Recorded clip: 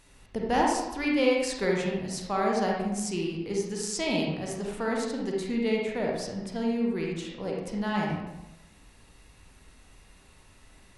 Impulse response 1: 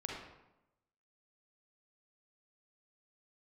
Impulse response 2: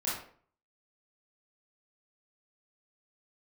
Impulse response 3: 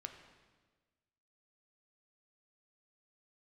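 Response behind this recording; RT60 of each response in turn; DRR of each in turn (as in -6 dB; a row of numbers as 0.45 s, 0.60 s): 1; 0.90 s, 0.50 s, 1.4 s; -2.0 dB, -8.5 dB, 5.0 dB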